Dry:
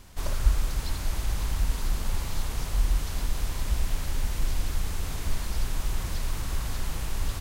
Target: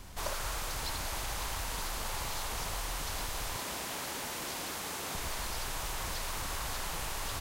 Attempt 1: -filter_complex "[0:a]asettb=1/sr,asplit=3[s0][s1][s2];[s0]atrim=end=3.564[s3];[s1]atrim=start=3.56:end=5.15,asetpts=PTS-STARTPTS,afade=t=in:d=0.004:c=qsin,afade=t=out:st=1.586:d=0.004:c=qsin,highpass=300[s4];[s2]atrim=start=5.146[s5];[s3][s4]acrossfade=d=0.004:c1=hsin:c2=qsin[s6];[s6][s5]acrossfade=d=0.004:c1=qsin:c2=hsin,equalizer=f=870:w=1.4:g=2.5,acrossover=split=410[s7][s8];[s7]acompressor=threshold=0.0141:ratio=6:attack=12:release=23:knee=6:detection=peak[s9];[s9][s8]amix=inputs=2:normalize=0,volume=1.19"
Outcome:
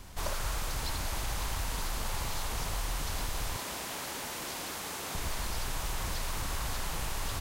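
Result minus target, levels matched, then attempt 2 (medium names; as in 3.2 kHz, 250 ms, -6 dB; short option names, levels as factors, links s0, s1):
compression: peak gain reduction -5.5 dB
-filter_complex "[0:a]asettb=1/sr,asplit=3[s0][s1][s2];[s0]atrim=end=3.564[s3];[s1]atrim=start=3.56:end=5.15,asetpts=PTS-STARTPTS,afade=t=in:d=0.004:c=qsin,afade=t=out:st=1.586:d=0.004:c=qsin,highpass=300[s4];[s2]atrim=start=5.146[s5];[s3][s4]acrossfade=d=0.004:c1=hsin:c2=qsin[s6];[s6][s5]acrossfade=d=0.004:c1=qsin:c2=hsin,equalizer=f=870:w=1.4:g=2.5,acrossover=split=410[s7][s8];[s7]acompressor=threshold=0.00668:ratio=6:attack=12:release=23:knee=6:detection=peak[s9];[s9][s8]amix=inputs=2:normalize=0,volume=1.19"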